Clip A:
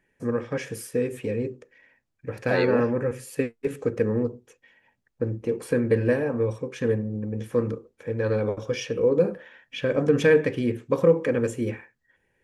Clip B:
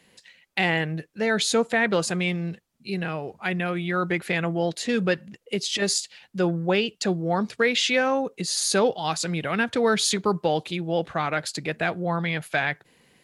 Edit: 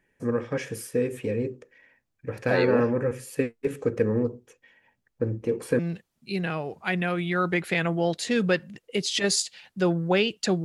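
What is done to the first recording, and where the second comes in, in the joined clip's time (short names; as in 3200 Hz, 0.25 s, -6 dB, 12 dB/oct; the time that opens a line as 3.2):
clip A
5.79 switch to clip B from 2.37 s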